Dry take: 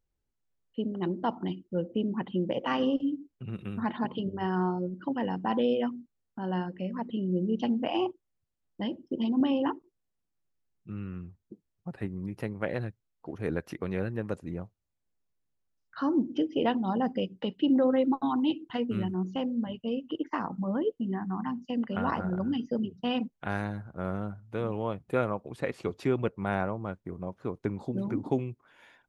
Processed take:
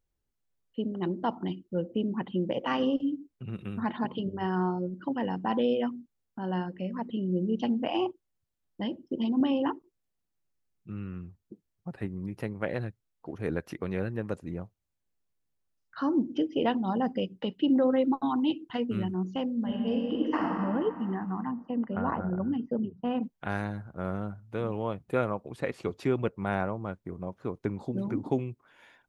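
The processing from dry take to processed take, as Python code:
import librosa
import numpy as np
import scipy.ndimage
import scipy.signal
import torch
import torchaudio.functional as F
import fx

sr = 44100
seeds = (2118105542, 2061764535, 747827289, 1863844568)

y = fx.reverb_throw(x, sr, start_s=19.52, length_s=1.04, rt60_s=2.5, drr_db=-1.0)
y = fx.lowpass(y, sr, hz=1500.0, slope=12, at=(21.45, 23.23))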